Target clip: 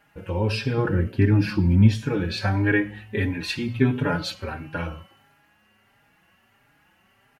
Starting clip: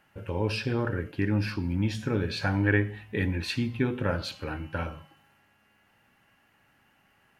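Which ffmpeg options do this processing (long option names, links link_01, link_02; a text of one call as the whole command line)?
ffmpeg -i in.wav -filter_complex "[0:a]asettb=1/sr,asplit=3[link_01][link_02][link_03];[link_01]atrim=end=0.774[link_04];[link_02]atrim=start=0.77:end=1.94,asetpts=PTS-STARTPTS,afade=type=in:duration=0.004:curve=qsin,afade=type=out:start_time=1.166:duration=0.004:curve=qsin,equalizer=frequency=150:width=0.51:gain=8[link_05];[link_03]atrim=start=1.936[link_06];[link_04][link_05]acrossfade=duration=0.004:curve1=hsin:curve2=qsin[link_07];[link_07][link_06]acrossfade=duration=0.004:curve1=qsin:curve2=hsin,asettb=1/sr,asplit=3[link_08][link_09][link_10];[link_08]atrim=end=3.674[link_11];[link_09]atrim=start=3.67:end=4.34,asetpts=PTS-STARTPTS,afade=type=in:duration=0.004:curve=qsin,afade=type=out:start_time=0.666:duration=0.004:curve=qsin,aecho=1:1:7:0.7,atrim=end_sample=29547[link_12];[link_10]atrim=start=4.336[link_13];[link_11][link_12]acrossfade=duration=0.004:curve1=hsin:curve2=qsin[link_14];[link_14][link_13]acrossfade=duration=0.004:curve1=qsin:curve2=hsin,asplit=2[link_15][link_16];[link_16]adelay=4.5,afreqshift=1.5[link_17];[link_15][link_17]amix=inputs=2:normalize=1,volume=6.5dB" out.wav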